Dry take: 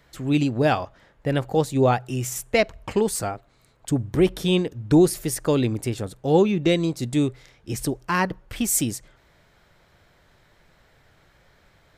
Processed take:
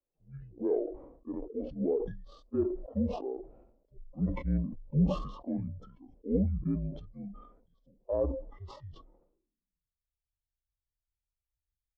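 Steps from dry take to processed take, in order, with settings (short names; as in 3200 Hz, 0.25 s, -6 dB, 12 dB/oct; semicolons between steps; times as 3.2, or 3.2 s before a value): median filter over 3 samples; frequency shift -80 Hz; low-pass sweep 860 Hz -> 140 Hz, 9.28–9.96; pitch shift -8 st; harmonic-percussive split percussive -13 dB; spectral noise reduction 23 dB; sustainer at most 72 dB/s; gain -8.5 dB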